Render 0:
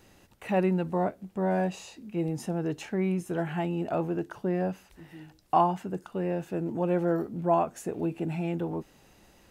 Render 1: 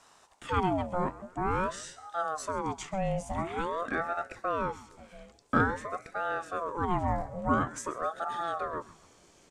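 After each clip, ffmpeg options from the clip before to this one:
ffmpeg -i in.wav -filter_complex "[0:a]lowpass=frequency=7600:width_type=q:width=2.9,asplit=4[link_01][link_02][link_03][link_04];[link_02]adelay=132,afreqshift=130,volume=-18.5dB[link_05];[link_03]adelay=264,afreqshift=260,volume=-26.7dB[link_06];[link_04]adelay=396,afreqshift=390,volume=-34.9dB[link_07];[link_01][link_05][link_06][link_07]amix=inputs=4:normalize=0,aeval=exprs='val(0)*sin(2*PI*690*n/s+690*0.5/0.48*sin(2*PI*0.48*n/s))':channel_layout=same" out.wav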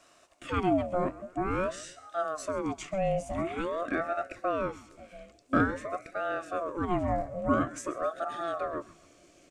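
ffmpeg -i in.wav -af "superequalizer=6b=2.24:8b=2:9b=0.398:12b=1.58,volume=-1.5dB" out.wav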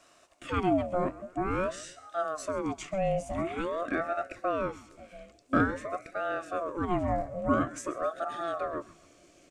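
ffmpeg -i in.wav -af anull out.wav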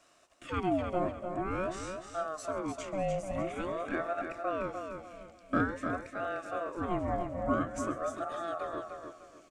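ffmpeg -i in.wav -af "aecho=1:1:299|598|897|1196:0.473|0.142|0.0426|0.0128,volume=-4dB" out.wav

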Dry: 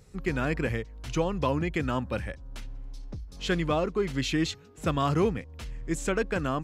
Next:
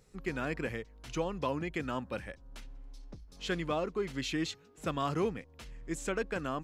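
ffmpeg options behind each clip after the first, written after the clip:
ffmpeg -i in.wav -af "equalizer=frequency=79:width=0.8:gain=-9,volume=-5.5dB" out.wav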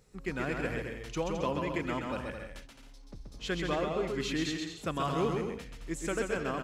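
ffmpeg -i in.wav -af "aecho=1:1:130|214.5|269.4|305.1|328.3:0.631|0.398|0.251|0.158|0.1" out.wav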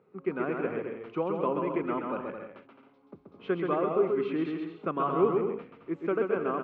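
ffmpeg -i in.wav -af "highpass=frequency=130:width=0.5412,highpass=frequency=130:width=1.3066,equalizer=frequency=130:width_type=q:width=4:gain=-9,equalizer=frequency=390:width_type=q:width=4:gain=8,equalizer=frequency=1200:width_type=q:width=4:gain=6,equalizer=frequency=1800:width_type=q:width=4:gain=-10,lowpass=frequency=2200:width=0.5412,lowpass=frequency=2200:width=1.3066,volume=1.5dB" out.wav

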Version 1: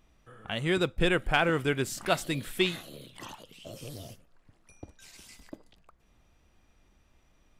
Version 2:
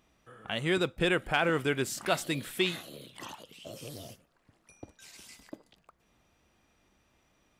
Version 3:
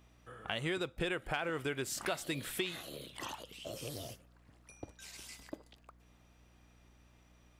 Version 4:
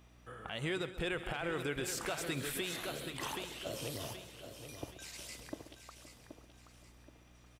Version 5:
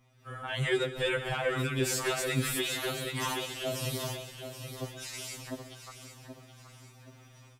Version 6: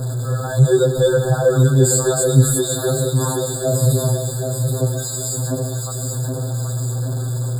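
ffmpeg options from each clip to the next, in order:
ffmpeg -i in.wav -filter_complex "[0:a]highpass=frequency=150:poles=1,asplit=2[link_01][link_02];[link_02]alimiter=limit=-20dB:level=0:latency=1:release=22,volume=-1dB[link_03];[link_01][link_03]amix=inputs=2:normalize=0,volume=-5dB" out.wav
ffmpeg -i in.wav -af "equalizer=frequency=200:width_type=o:width=0.77:gain=-5,aeval=exprs='val(0)+0.000631*(sin(2*PI*60*n/s)+sin(2*PI*2*60*n/s)/2+sin(2*PI*3*60*n/s)/3+sin(2*PI*4*60*n/s)/4+sin(2*PI*5*60*n/s)/5)':channel_layout=same,acompressor=threshold=-34dB:ratio=6,volume=1dB" out.wav
ffmpeg -i in.wav -filter_complex "[0:a]asplit=2[link_01][link_02];[link_02]aecho=0:1:776|1552|2328|3104:0.316|0.12|0.0457|0.0174[link_03];[link_01][link_03]amix=inputs=2:normalize=0,alimiter=level_in=5.5dB:limit=-24dB:level=0:latency=1:release=69,volume=-5.5dB,asplit=2[link_04][link_05];[link_05]aecho=0:1:133|187|519:0.178|0.133|0.141[link_06];[link_04][link_06]amix=inputs=2:normalize=0,volume=2dB" out.wav
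ffmpeg -i in.wav -af "dynaudnorm=framelen=170:gausssize=3:maxgain=12dB,afftfilt=real='re*2.45*eq(mod(b,6),0)':imag='im*2.45*eq(mod(b,6),0)':win_size=2048:overlap=0.75,volume=-2.5dB" out.wav
ffmpeg -i in.wav -af "aeval=exprs='val(0)+0.5*0.02*sgn(val(0))':channel_layout=same,equalizer=frequency=125:width_type=o:width=1:gain=12,equalizer=frequency=500:width_type=o:width=1:gain=9,equalizer=frequency=1000:width_type=o:width=1:gain=-5,equalizer=frequency=2000:width_type=o:width=1:gain=-3,equalizer=frequency=4000:width_type=o:width=1:gain=-5,equalizer=frequency=8000:width_type=o:width=1:gain=11,afftfilt=real='re*eq(mod(floor(b*sr/1024/1700),2),0)':imag='im*eq(mod(floor(b*sr/1024/1700),2),0)':win_size=1024:overlap=0.75,volume=7dB" out.wav

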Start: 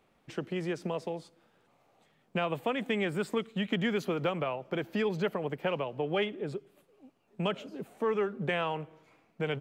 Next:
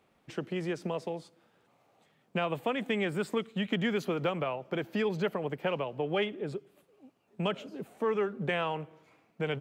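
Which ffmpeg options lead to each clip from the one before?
ffmpeg -i in.wav -af "highpass=44" out.wav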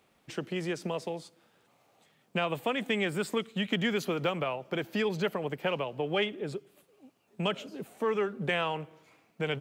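ffmpeg -i in.wav -af "highshelf=frequency=2800:gain=7.5" out.wav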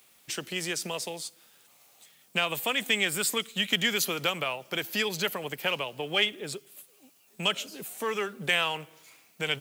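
ffmpeg -i in.wav -af "crystalizer=i=10:c=0,volume=-4.5dB" out.wav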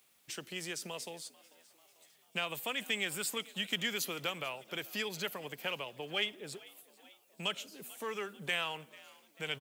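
ffmpeg -i in.wav -filter_complex "[0:a]asplit=5[link_01][link_02][link_03][link_04][link_05];[link_02]adelay=442,afreqshift=73,volume=-22dB[link_06];[link_03]adelay=884,afreqshift=146,volume=-26.9dB[link_07];[link_04]adelay=1326,afreqshift=219,volume=-31.8dB[link_08];[link_05]adelay=1768,afreqshift=292,volume=-36.6dB[link_09];[link_01][link_06][link_07][link_08][link_09]amix=inputs=5:normalize=0,volume=-8.5dB" out.wav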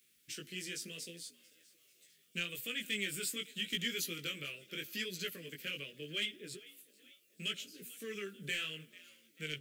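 ffmpeg -i in.wav -af "asoftclip=type=hard:threshold=-26dB,flanger=delay=16.5:depth=4.7:speed=0.77,asuperstop=centerf=850:order=4:qfactor=0.65,volume=2dB" out.wav

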